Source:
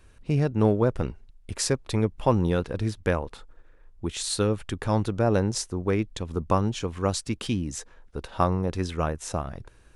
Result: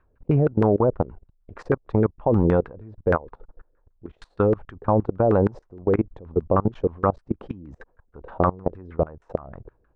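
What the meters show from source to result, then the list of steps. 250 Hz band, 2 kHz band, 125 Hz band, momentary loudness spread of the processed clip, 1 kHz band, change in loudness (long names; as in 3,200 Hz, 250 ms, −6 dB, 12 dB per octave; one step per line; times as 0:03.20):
+2.5 dB, −0.5 dB, +1.0 dB, 12 LU, +3.0 dB, +3.0 dB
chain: auto-filter low-pass saw down 6.4 Hz 400–1,500 Hz
output level in coarse steps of 23 dB
level +5.5 dB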